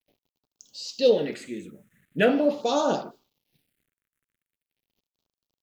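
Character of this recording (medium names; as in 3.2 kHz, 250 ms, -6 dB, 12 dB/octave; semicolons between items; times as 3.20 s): a quantiser's noise floor 12-bit, dither none; phasing stages 4, 0.42 Hz, lowest notch 770–1900 Hz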